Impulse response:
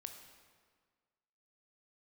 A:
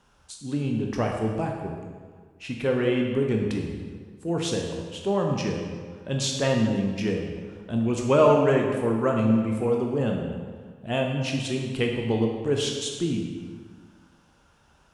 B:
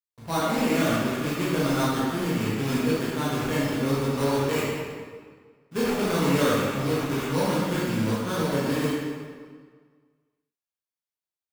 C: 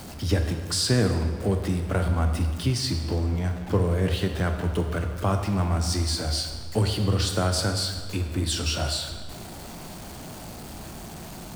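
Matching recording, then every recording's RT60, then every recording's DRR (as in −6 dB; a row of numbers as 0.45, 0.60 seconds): C; 1.7, 1.7, 1.7 seconds; 1.0, −9.0, 5.0 decibels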